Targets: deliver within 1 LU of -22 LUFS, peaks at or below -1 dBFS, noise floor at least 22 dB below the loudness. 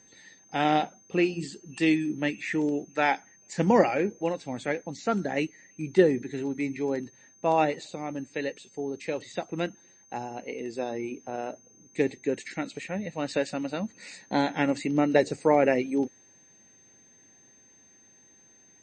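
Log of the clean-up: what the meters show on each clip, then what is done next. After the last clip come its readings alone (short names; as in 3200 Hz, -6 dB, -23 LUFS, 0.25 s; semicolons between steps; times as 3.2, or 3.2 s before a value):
steady tone 6300 Hz; tone level -56 dBFS; loudness -28.5 LUFS; peak -6.5 dBFS; loudness target -22.0 LUFS
-> notch 6300 Hz, Q 30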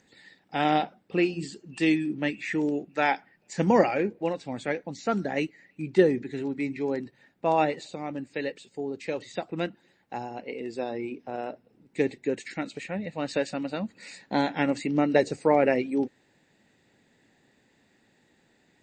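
steady tone none; loudness -28.5 LUFS; peak -6.5 dBFS; loudness target -22.0 LUFS
-> gain +6.5 dB; limiter -1 dBFS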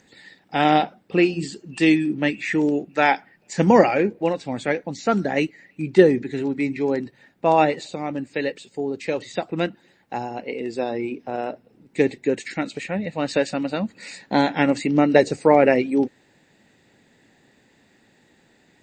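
loudness -22.0 LUFS; peak -1.0 dBFS; noise floor -60 dBFS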